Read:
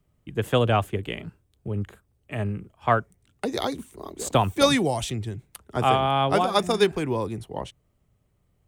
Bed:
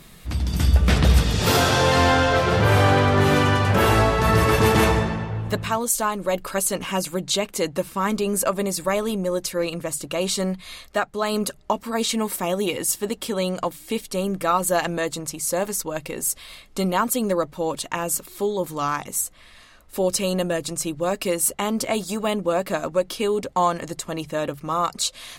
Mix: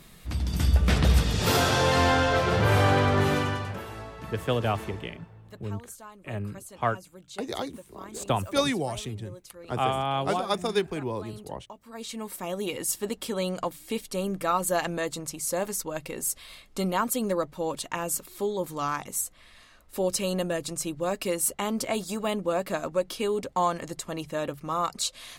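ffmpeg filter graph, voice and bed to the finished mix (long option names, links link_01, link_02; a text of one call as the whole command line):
ffmpeg -i stem1.wav -i stem2.wav -filter_complex "[0:a]adelay=3950,volume=-5.5dB[link_01];[1:a]volume=13dB,afade=type=out:start_time=3.13:duration=0.71:silence=0.125893,afade=type=in:start_time=11.77:duration=1.23:silence=0.133352[link_02];[link_01][link_02]amix=inputs=2:normalize=0" out.wav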